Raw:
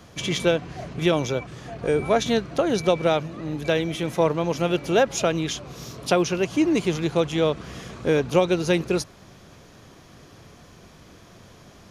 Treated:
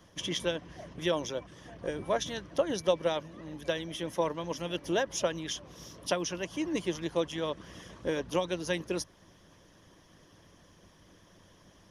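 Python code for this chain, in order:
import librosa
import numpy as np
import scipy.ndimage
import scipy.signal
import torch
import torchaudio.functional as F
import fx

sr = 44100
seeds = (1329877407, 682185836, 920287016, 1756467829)

y = fx.ripple_eq(x, sr, per_octave=1.2, db=8)
y = fx.hpss(y, sr, part='harmonic', gain_db=-10)
y = y * librosa.db_to_amplitude(-7.0)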